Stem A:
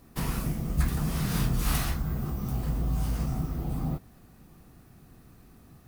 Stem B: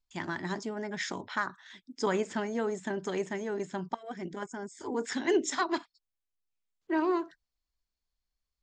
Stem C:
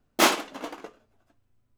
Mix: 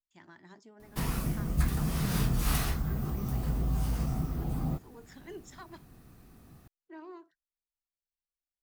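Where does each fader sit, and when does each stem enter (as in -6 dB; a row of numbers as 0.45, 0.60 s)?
-1.5 dB, -19.0 dB, off; 0.80 s, 0.00 s, off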